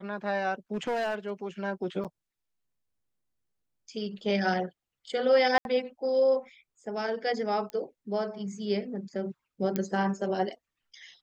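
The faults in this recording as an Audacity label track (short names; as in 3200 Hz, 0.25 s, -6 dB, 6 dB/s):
0.740000	1.310000	clipped -26 dBFS
2.040000	2.050000	gap 7.4 ms
5.580000	5.650000	gap 71 ms
7.700000	7.700000	pop -24 dBFS
9.760000	9.760000	pop -15 dBFS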